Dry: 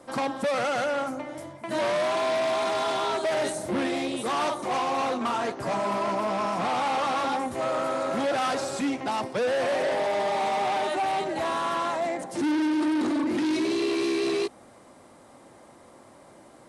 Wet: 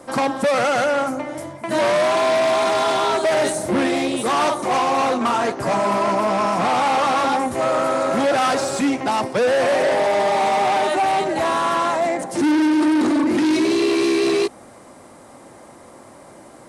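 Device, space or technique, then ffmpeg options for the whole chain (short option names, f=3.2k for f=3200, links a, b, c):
exciter from parts: -filter_complex "[0:a]asplit=2[a][b];[b]highpass=f=3.2k:w=0.5412,highpass=f=3.2k:w=1.3066,asoftclip=type=tanh:threshold=-40dB,volume=-10dB[c];[a][c]amix=inputs=2:normalize=0,volume=8dB"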